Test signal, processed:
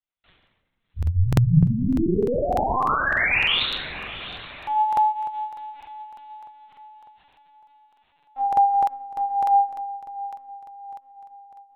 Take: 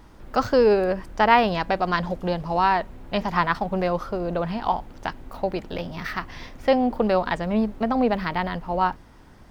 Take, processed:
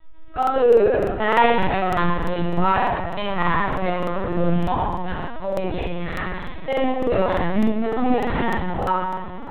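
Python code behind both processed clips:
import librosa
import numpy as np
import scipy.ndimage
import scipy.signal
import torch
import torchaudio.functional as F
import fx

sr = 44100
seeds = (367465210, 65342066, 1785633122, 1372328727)

p1 = fx.high_shelf(x, sr, hz=2600.0, db=4.5)
p2 = fx.chorus_voices(p1, sr, voices=6, hz=0.37, base_ms=24, depth_ms=1.5, mix_pct=45)
p3 = p2 + fx.echo_diffused(p2, sr, ms=693, feedback_pct=50, wet_db=-14.5, dry=0)
p4 = fx.room_shoebox(p3, sr, seeds[0], volume_m3=990.0, walls='mixed', distance_m=6.9)
p5 = fx.lpc_vocoder(p4, sr, seeds[1], excitation='pitch_kept', order=16)
p6 = fx.buffer_crackle(p5, sr, first_s=0.38, period_s=0.3, block=2048, kind='repeat')
y = F.gain(torch.from_numpy(p6), -8.0).numpy()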